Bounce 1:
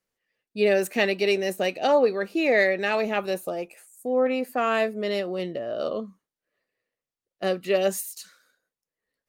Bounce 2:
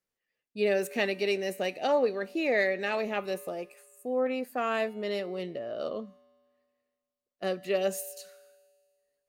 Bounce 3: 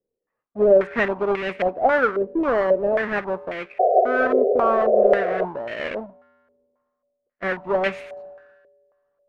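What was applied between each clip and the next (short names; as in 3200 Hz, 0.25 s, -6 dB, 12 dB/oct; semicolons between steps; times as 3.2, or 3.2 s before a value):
resonator 82 Hz, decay 1.9 s, harmonics odd, mix 50%
half-waves squared off; painted sound noise, 3.79–5.45, 370–760 Hz -25 dBFS; stepped low-pass 3.7 Hz 460–2300 Hz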